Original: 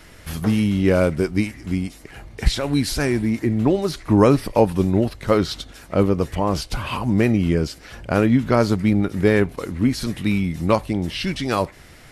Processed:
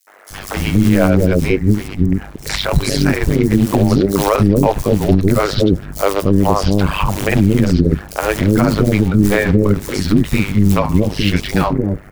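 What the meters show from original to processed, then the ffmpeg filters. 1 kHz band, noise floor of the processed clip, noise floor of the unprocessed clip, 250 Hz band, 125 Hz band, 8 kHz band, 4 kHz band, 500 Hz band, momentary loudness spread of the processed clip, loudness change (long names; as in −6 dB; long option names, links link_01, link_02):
+5.5 dB, −33 dBFS, −45 dBFS, +5.5 dB, +7.5 dB, +7.5 dB, +5.5 dB, +4.0 dB, 5 LU, +5.5 dB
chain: -filter_complex "[0:a]lowpass=8700,lowshelf=frequency=100:gain=4,acrossover=split=1900[link_01][link_02];[link_01]acrusher=bits=5:mode=log:mix=0:aa=0.000001[link_03];[link_02]aeval=exprs='sgn(val(0))*max(abs(val(0))-0.00531,0)':channel_layout=same[link_04];[link_03][link_04]amix=inputs=2:normalize=0,flanger=delay=1.2:depth=7.9:regen=-90:speed=0.69:shape=sinusoidal,tremolo=f=100:d=0.947,acrossover=split=470|4700[link_05][link_06][link_07];[link_06]adelay=70[link_08];[link_05]adelay=300[link_09];[link_09][link_08][link_07]amix=inputs=3:normalize=0,alimiter=level_in=18.5dB:limit=-1dB:release=50:level=0:latency=1,volume=-1dB"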